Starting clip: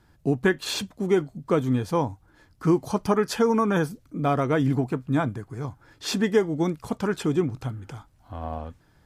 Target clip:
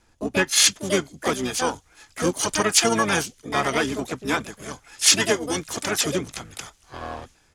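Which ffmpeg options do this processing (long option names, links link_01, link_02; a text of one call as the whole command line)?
ffmpeg -i in.wav -filter_complex "[0:a]equalizer=frequency=120:width=1.1:gain=-10.5,acrossover=split=1500[link_01][link_02];[link_02]dynaudnorm=framelen=150:gausssize=7:maxgain=11.5dB[link_03];[link_01][link_03]amix=inputs=2:normalize=0,atempo=1.2,lowpass=frequency=6700:width_type=q:width=4,asplit=2[link_04][link_05];[link_05]asoftclip=type=tanh:threshold=-15.5dB,volume=-10dB[link_06];[link_04][link_06]amix=inputs=2:normalize=0,asplit=4[link_07][link_08][link_09][link_10];[link_08]asetrate=22050,aresample=44100,atempo=2,volume=-8dB[link_11];[link_09]asetrate=33038,aresample=44100,atempo=1.33484,volume=-12dB[link_12];[link_10]asetrate=66075,aresample=44100,atempo=0.66742,volume=-4dB[link_13];[link_07][link_11][link_12][link_13]amix=inputs=4:normalize=0,volume=-4.5dB" out.wav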